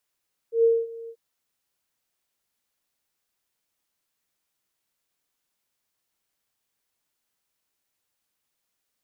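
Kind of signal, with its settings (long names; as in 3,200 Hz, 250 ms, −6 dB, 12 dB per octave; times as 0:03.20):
note with an ADSR envelope sine 459 Hz, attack 118 ms, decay 228 ms, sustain −21 dB, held 0.57 s, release 66 ms −14 dBFS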